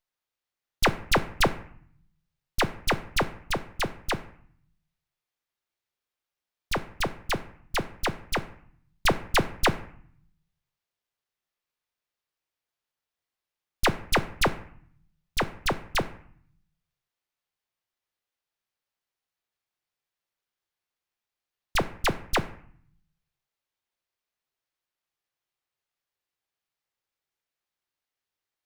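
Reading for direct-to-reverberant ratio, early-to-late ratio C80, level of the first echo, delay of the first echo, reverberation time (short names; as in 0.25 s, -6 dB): 10.5 dB, 18.5 dB, none, none, 0.55 s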